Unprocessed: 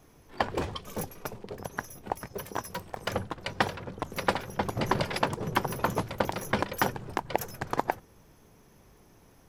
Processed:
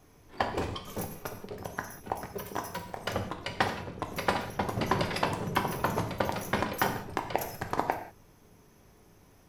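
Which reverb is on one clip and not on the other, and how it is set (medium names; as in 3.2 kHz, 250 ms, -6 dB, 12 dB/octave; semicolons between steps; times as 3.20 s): gated-style reverb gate 220 ms falling, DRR 4 dB; trim -2 dB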